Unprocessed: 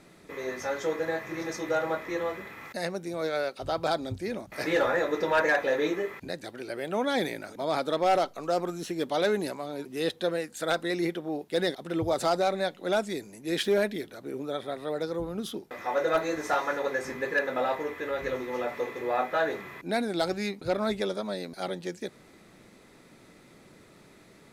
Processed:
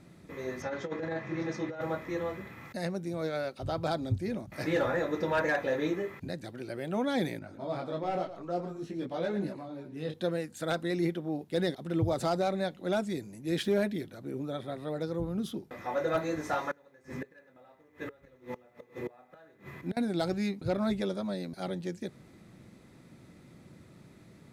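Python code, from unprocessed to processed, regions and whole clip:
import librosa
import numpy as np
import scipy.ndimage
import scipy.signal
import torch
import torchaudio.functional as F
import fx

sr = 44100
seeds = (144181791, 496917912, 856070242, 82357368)

y = fx.chain(x, sr, fx.bandpass_edges(low_hz=110.0, high_hz=4600.0),
    fx.over_compress(threshold_db=-30.0, ratio=-0.5), at=(0.62, 1.81))
y = fx.chain(y, sr, fx.lowpass(hz=2700.0, slope=6),
    fx.echo_single(ms=113, db=-12.0),
    fx.detune_double(cents=17), at=(7.39, 10.14))
y = fx.chain(y, sr, fx.echo_single(ms=96, db=-11.5),
    fx.gate_flip(shuts_db=-23.0, range_db=-26),
    fx.quant_companded(bits=8), at=(16.71, 19.97))
y = fx.peak_eq(y, sr, hz=110.0, db=13.0, octaves=2.6)
y = fx.notch(y, sr, hz=430.0, q=12.0)
y = F.gain(torch.from_numpy(y), -6.0).numpy()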